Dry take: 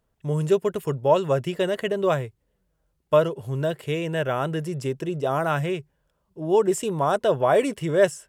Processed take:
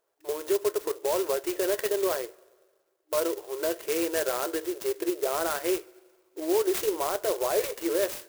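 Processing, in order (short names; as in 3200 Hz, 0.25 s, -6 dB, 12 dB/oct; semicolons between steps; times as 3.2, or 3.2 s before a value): limiter -18.5 dBFS, peak gain reduction 11.5 dB; dynamic EQ 760 Hz, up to -3 dB, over -36 dBFS, Q 1.3; two-slope reverb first 0.23 s, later 1.6 s, from -21 dB, DRR 10.5 dB; FFT band-pass 310–9800 Hz; clock jitter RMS 0.084 ms; gain +1.5 dB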